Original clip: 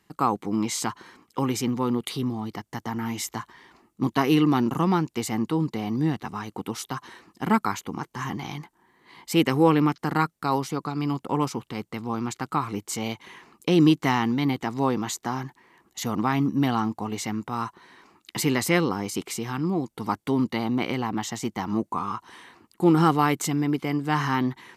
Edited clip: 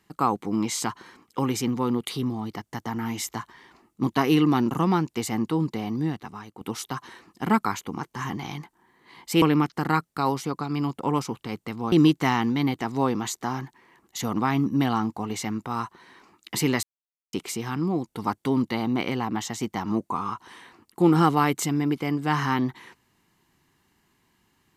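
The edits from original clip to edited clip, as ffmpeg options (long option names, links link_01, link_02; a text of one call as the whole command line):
ffmpeg -i in.wav -filter_complex "[0:a]asplit=6[link_01][link_02][link_03][link_04][link_05][link_06];[link_01]atrim=end=6.61,asetpts=PTS-STARTPTS,afade=type=out:start_time=5.72:duration=0.89:silence=0.298538[link_07];[link_02]atrim=start=6.61:end=9.422,asetpts=PTS-STARTPTS,afade=type=in:duration=0.004:curve=hsin:silence=0.298538[link_08];[link_03]atrim=start=9.678:end=12.182[link_09];[link_04]atrim=start=13.738:end=18.65,asetpts=PTS-STARTPTS,afade=type=out:start_time=4.908:duration=0.004:curve=hsin[link_10];[link_05]atrim=start=18.65:end=19.15,asetpts=PTS-STARTPTS,volume=0[link_11];[link_06]atrim=start=19.15,asetpts=PTS-STARTPTS,afade=type=in:duration=0.004:curve=hsin[link_12];[link_07][link_08]concat=n=2:v=0:a=1[link_13];[link_13][link_09]acrossfade=duration=0.004:curve1=hsin:curve2=hsin[link_14];[link_10][link_11][link_12]concat=n=3:v=0:a=1[link_15];[link_14][link_15]acrossfade=duration=0.004:curve1=hsin:curve2=hsin" out.wav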